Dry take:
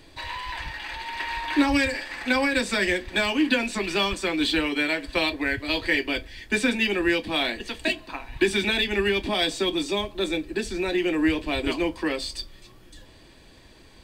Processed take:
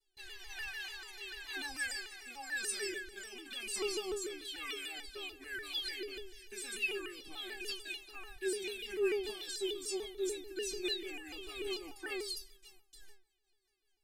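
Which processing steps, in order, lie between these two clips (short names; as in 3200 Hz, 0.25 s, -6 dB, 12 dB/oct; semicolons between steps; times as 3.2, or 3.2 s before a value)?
pre-emphasis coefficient 0.8; gate with hold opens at -46 dBFS; in parallel at +1 dB: negative-ratio compressor -39 dBFS, ratio -0.5; on the sum: rotary speaker horn 1 Hz, later 5 Hz, at 7.41; metallic resonator 390 Hz, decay 0.42 s, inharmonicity 0.008; on a send at -18 dB: reverb RT60 0.75 s, pre-delay 3 ms; on the sum: shaped vibrato saw down 6.8 Hz, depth 160 cents; gain +10 dB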